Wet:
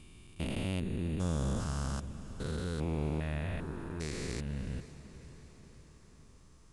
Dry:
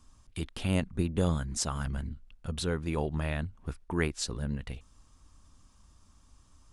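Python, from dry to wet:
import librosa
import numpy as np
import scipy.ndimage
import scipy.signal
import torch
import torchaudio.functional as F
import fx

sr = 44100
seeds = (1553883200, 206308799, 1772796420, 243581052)

y = fx.spec_steps(x, sr, hold_ms=400)
y = fx.echo_diffused(y, sr, ms=530, feedback_pct=58, wet_db=-15.0)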